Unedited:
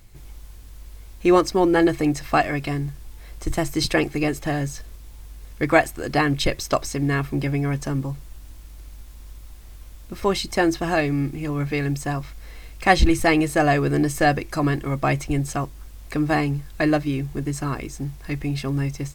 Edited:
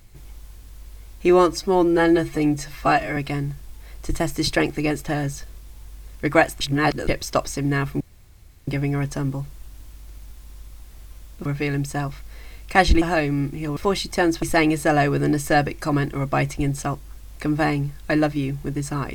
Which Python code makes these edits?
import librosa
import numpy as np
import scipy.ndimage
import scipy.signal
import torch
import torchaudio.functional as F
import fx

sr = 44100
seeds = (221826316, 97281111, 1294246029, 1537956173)

y = fx.edit(x, sr, fx.stretch_span(start_s=1.29, length_s=1.25, factor=1.5),
    fx.reverse_span(start_s=5.98, length_s=0.47),
    fx.insert_room_tone(at_s=7.38, length_s=0.67),
    fx.swap(start_s=10.16, length_s=0.66, other_s=11.57, other_length_s=1.56), tone=tone)